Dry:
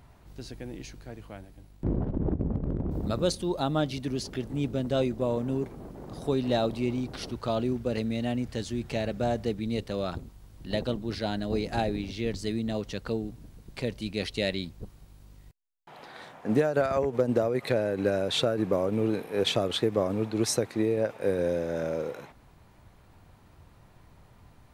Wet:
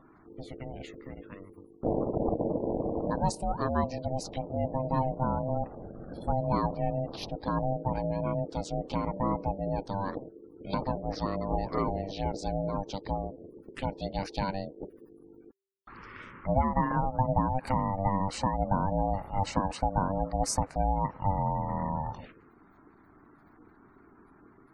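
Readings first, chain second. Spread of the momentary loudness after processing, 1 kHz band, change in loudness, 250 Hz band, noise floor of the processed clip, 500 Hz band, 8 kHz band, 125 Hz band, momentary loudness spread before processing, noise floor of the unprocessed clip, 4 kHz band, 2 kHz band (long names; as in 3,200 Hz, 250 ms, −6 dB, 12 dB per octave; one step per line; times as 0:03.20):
15 LU, +7.5 dB, −2.0 dB, −3.5 dB, −58 dBFS, −5.0 dB, −2.5 dB, +0.5 dB, 15 LU, −56 dBFS, −10.5 dB, −6.5 dB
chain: ring modulation 390 Hz
in parallel at −1 dB: downward compressor, threshold −45 dBFS, peak gain reduction 22 dB
on the sum: gate on every frequency bin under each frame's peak −25 dB strong
phaser swept by the level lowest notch 410 Hz, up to 3,400 Hz, full sweep at −29 dBFS
level +1 dB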